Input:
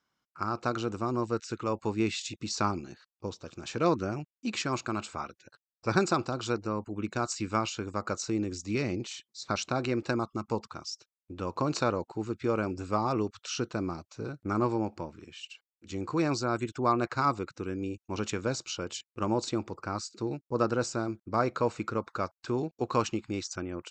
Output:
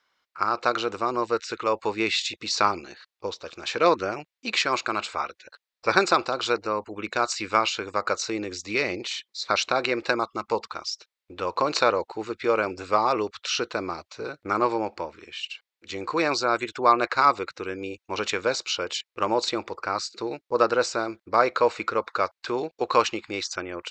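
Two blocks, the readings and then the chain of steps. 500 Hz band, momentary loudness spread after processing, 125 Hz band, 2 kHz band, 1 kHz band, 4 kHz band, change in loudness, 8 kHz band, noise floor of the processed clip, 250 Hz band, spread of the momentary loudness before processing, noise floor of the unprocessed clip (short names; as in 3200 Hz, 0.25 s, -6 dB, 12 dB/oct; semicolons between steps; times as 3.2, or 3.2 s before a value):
+6.5 dB, 12 LU, -8.5 dB, +10.5 dB, +8.5 dB, +10.5 dB, +6.0 dB, +4.5 dB, under -85 dBFS, -1.0 dB, 11 LU, under -85 dBFS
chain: graphic EQ 125/250/500/1000/2000/4000 Hz -10/-4/+8/+5/+10/+10 dB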